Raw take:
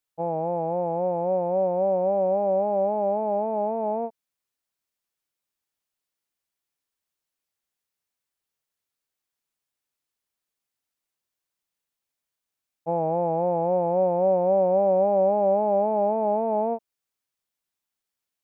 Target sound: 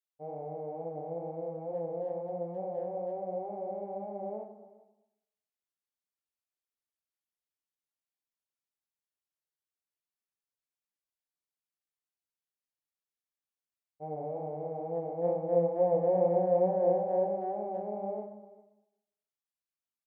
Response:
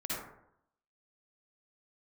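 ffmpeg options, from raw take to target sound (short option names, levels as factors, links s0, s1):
-filter_complex "[0:a]agate=range=0.355:threshold=0.1:ratio=16:detection=peak,flanger=delay=16.5:depth=5.9:speed=2.4,aecho=1:1:366:0.1,asplit=2[s0][s1];[1:a]atrim=start_sample=2205[s2];[s1][s2]afir=irnorm=-1:irlink=0,volume=0.355[s3];[s0][s3]amix=inputs=2:normalize=0,asetrate=40517,aresample=44100,volume=0.668"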